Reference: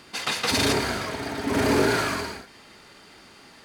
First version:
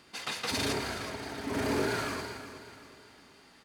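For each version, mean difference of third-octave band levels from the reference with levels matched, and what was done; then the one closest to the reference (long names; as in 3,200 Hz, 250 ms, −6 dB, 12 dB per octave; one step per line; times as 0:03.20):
2.5 dB: repeating echo 372 ms, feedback 42%, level −12.5 dB
level −9 dB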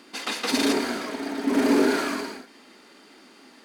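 4.5 dB: low shelf with overshoot 170 Hz −14 dB, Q 3
level −3 dB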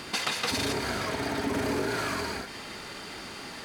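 7.5 dB: downward compressor 6 to 1, threshold −37 dBFS, peak gain reduction 18.5 dB
level +9 dB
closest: first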